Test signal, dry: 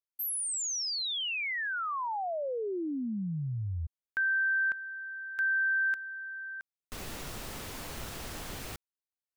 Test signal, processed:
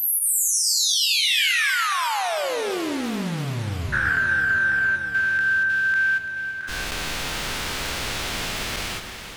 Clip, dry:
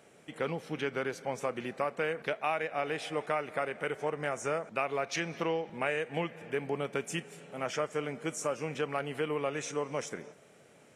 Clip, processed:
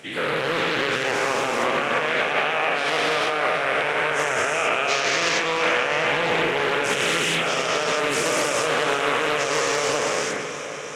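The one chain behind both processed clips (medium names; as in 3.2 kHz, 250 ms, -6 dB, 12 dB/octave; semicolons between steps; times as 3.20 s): every event in the spectrogram widened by 480 ms; peaking EQ 3.1 kHz +9 dB 2.7 oct; in parallel at -2.5 dB: compression, threshold -30 dBFS; on the sum: peak limiter -10.5 dBFS; echo whose repeats swap between lows and highs 169 ms, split 1.4 kHz, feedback 88%, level -11 dB; spring tank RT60 2.7 s, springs 59 ms, chirp 50 ms, DRR 10 dB; loudspeaker Doppler distortion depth 0.35 ms; trim -1.5 dB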